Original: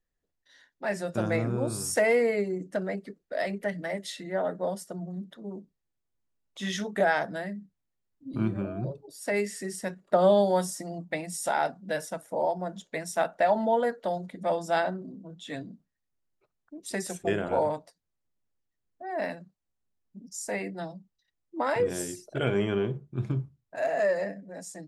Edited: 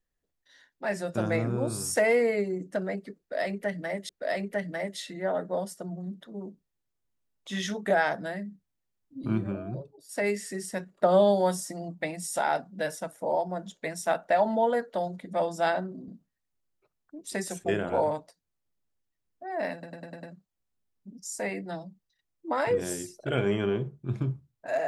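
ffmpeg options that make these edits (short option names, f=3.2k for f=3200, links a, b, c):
-filter_complex "[0:a]asplit=9[a][b][c][d][e][f][g][h][i];[a]atrim=end=4.092[j];[b]atrim=start=3.188:end=9.19,asetpts=PTS-STARTPTS,afade=t=out:st=5.332:d=0.67:silence=0.375837[k];[c]atrim=start=9.19:end=15.182,asetpts=PTS-STARTPTS,afade=t=in:d=0.004:c=hsin:silence=0.375837[l];[d]atrim=start=15.668:end=19.422[m];[e]atrim=start=19.318:end=19.422[n];[f]atrim=start=19.318:end=19.422[o];[g]atrim=start=19.318:end=19.422[p];[h]atrim=start=19.318:end=19.422[q];[i]atrim=start=19.318[r];[k][l]concat=n=2:v=0:a=1[s];[j][s]acrossfade=d=0.004:c1=hsin:c2=hsin[t];[t][m]acrossfade=d=0.004:c1=hsin:c2=hsin[u];[u][n]acrossfade=d=0.004:c1=hsin:c2=hsin[v];[v][o]acrossfade=d=0.004:c1=hsin:c2=hsin[w];[w][p]acrossfade=d=0.004:c1=hsin:c2=hsin[x];[x][q]acrossfade=d=0.004:c1=hsin:c2=hsin[y];[y][r]acrossfade=d=0.004:c1=hsin:c2=hsin"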